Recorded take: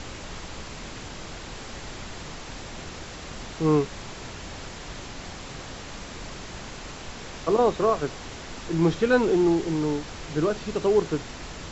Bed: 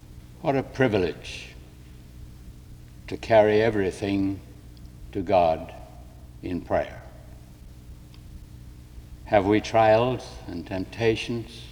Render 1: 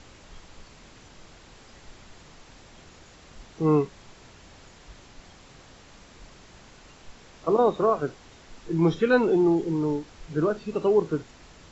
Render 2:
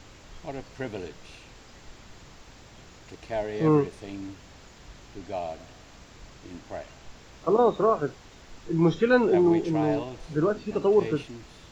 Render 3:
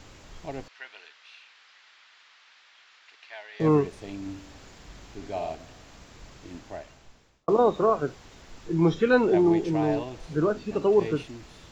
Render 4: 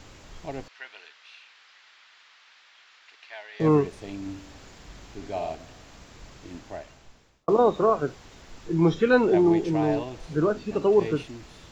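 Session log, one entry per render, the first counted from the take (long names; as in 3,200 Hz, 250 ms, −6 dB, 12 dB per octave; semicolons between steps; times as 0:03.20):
noise reduction from a noise print 12 dB
mix in bed −13 dB
0:00.68–0:03.60: flat-topped band-pass 2,400 Hz, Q 0.77; 0:04.20–0:05.55: flutter between parallel walls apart 10.6 metres, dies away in 0.51 s; 0:06.58–0:07.48: fade out
level +1 dB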